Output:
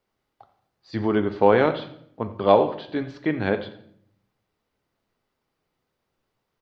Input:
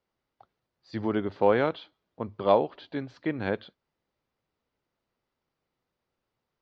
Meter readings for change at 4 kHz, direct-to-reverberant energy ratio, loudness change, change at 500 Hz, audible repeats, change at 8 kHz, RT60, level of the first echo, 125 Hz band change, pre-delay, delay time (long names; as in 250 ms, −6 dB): +5.5 dB, 8.0 dB, +5.5 dB, +5.5 dB, 2, can't be measured, 0.65 s, −17.0 dB, +6.0 dB, 3 ms, 87 ms